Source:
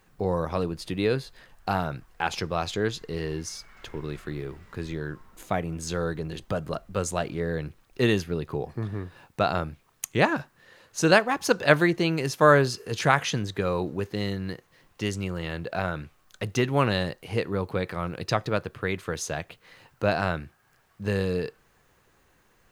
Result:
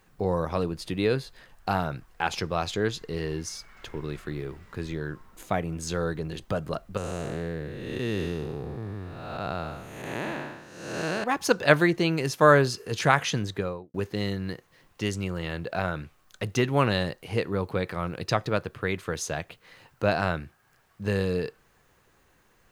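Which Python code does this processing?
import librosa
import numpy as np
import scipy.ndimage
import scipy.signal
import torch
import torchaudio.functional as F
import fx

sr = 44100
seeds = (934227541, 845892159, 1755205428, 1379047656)

y = fx.spec_blur(x, sr, span_ms=385.0, at=(6.97, 11.24))
y = fx.studio_fade_out(y, sr, start_s=13.48, length_s=0.46)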